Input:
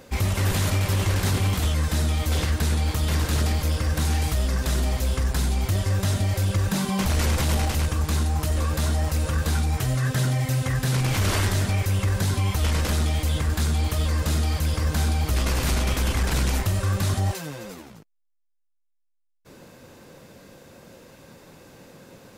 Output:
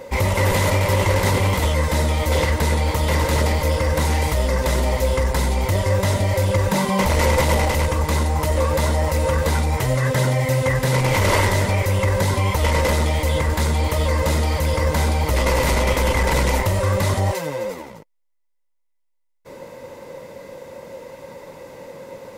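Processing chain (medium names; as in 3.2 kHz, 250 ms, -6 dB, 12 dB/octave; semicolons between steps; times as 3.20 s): small resonant body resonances 540/920/2000 Hz, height 14 dB, ringing for 25 ms; trim +2.5 dB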